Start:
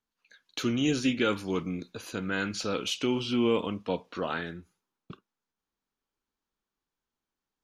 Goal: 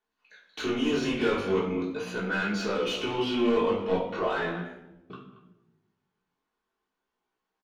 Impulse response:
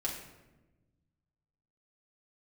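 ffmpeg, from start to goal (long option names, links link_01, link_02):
-filter_complex "[0:a]asplit=2[link_01][link_02];[link_02]adelay=230,highpass=300,lowpass=3400,asoftclip=type=hard:threshold=-24dB,volume=-16dB[link_03];[link_01][link_03]amix=inputs=2:normalize=0,asplit=2[link_04][link_05];[link_05]highpass=frequency=720:poles=1,volume=20dB,asoftclip=type=tanh:threshold=-14dB[link_06];[link_04][link_06]amix=inputs=2:normalize=0,lowpass=frequency=1300:poles=1,volume=-6dB[link_07];[1:a]atrim=start_sample=2205,asetrate=57330,aresample=44100[link_08];[link_07][link_08]afir=irnorm=-1:irlink=0,flanger=delay=15:depth=6.7:speed=0.39"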